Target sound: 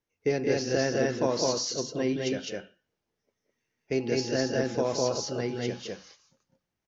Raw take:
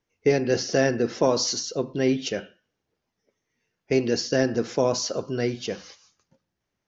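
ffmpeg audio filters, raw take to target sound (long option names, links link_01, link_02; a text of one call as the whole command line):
ffmpeg -i in.wav -filter_complex "[0:a]asettb=1/sr,asplit=3[link_01][link_02][link_03];[link_01]atrim=end=4.004[link_04];[link_02]atrim=start=4:end=5.59,asetpts=PTS-STARTPTS,afade=type=in:duration=0.004:curve=qsin,afade=type=out:start_time=1.586:duration=0.004:curve=qsin,aeval=exprs='val(0)+0.00562*sin(2*PI*830*n/s)':channel_layout=same[link_05];[link_03]atrim=start=5.586[link_06];[link_04][link_05]acrossfade=duration=0.004:curve1=hsin:curve2=qsin[link_07];[link_07][link_06]acrossfade=duration=0.004:curve1=qsin:curve2=hsin,aecho=1:1:174.9|207:0.355|0.891,volume=-6.5dB" out.wav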